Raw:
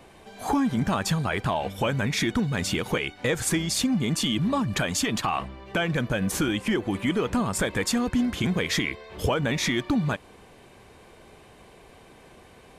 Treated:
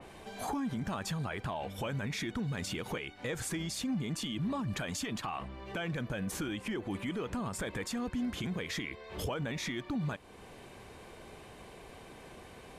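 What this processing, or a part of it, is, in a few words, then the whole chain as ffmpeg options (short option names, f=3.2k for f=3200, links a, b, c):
stacked limiters: -af "alimiter=limit=-18.5dB:level=0:latency=1:release=421,alimiter=limit=-22dB:level=0:latency=1:release=37,alimiter=level_in=4dB:limit=-24dB:level=0:latency=1:release=319,volume=-4dB,adynamicequalizer=threshold=0.00355:dfrequency=3500:dqfactor=0.7:tfrequency=3500:tqfactor=0.7:attack=5:release=100:ratio=0.375:range=1.5:mode=cutabove:tftype=highshelf"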